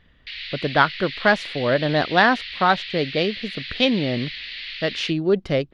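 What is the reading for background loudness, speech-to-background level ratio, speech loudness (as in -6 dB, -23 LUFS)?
-31.5 LUFS, 10.0 dB, -21.5 LUFS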